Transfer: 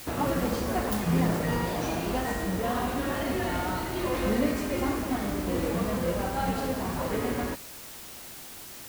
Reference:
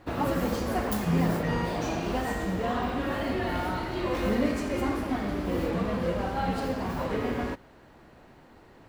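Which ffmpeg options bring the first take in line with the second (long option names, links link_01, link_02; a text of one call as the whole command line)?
ffmpeg -i in.wav -af "afwtdn=0.0063" out.wav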